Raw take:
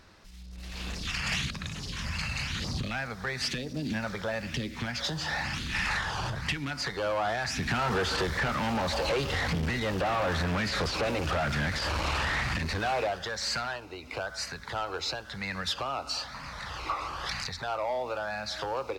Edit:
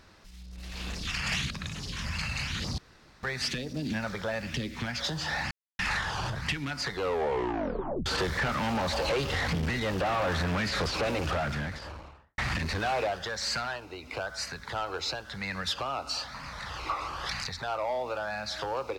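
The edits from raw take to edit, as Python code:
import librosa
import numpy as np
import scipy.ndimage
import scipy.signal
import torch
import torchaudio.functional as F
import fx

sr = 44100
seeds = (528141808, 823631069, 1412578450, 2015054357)

y = fx.studio_fade_out(x, sr, start_s=11.16, length_s=1.22)
y = fx.edit(y, sr, fx.room_tone_fill(start_s=2.78, length_s=0.45),
    fx.silence(start_s=5.51, length_s=0.28),
    fx.tape_stop(start_s=6.92, length_s=1.14), tone=tone)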